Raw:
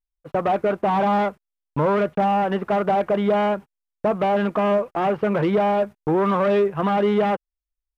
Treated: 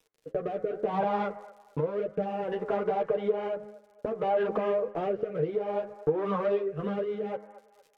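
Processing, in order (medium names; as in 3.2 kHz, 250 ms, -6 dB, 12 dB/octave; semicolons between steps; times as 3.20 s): expander -35 dBFS; crackle 62 per s -42 dBFS; peaking EQ 460 Hz +14 dB 0.41 oct; de-hum 104.5 Hz, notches 21; compression 5:1, threshold -22 dBFS, peak gain reduction 13.5 dB; chorus voices 4, 0.85 Hz, delay 10 ms, depth 3.8 ms; feedback echo behind a band-pass 229 ms, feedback 36%, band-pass 990 Hz, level -17 dB; rotary cabinet horn 0.6 Hz; low-pass that closes with the level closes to 1.5 kHz, closed at -16.5 dBFS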